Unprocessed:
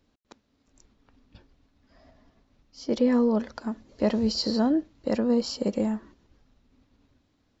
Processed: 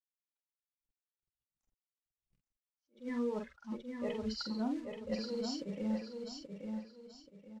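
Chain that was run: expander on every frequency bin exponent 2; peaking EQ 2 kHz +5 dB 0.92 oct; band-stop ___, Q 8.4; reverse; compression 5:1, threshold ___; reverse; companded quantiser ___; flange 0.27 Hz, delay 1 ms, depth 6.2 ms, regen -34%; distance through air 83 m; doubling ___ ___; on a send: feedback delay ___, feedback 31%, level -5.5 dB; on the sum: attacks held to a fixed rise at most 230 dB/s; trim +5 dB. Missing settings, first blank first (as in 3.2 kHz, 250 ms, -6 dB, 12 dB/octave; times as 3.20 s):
1.6 kHz, -37 dBFS, 6-bit, 46 ms, -5.5 dB, 830 ms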